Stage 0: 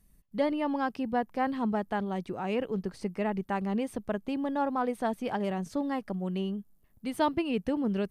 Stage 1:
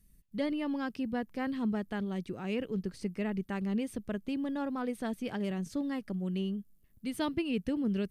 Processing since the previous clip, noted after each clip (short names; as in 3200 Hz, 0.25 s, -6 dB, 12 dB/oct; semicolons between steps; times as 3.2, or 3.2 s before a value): bell 830 Hz -12 dB 1.4 oct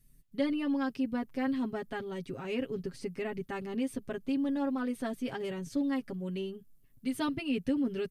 comb 7.4 ms, depth 86%; gain -1.5 dB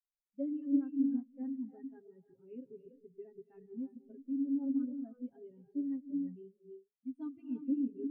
non-linear reverb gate 0.38 s rising, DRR 3 dB; spectral expander 2.5:1; gain -2 dB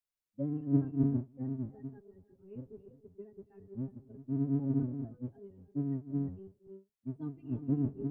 octaver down 1 oct, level 0 dB